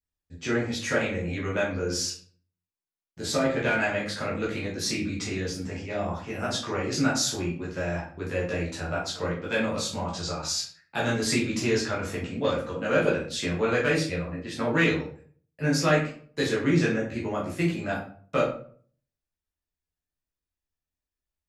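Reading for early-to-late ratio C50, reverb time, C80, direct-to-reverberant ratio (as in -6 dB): 5.5 dB, 0.50 s, 10.0 dB, -6.5 dB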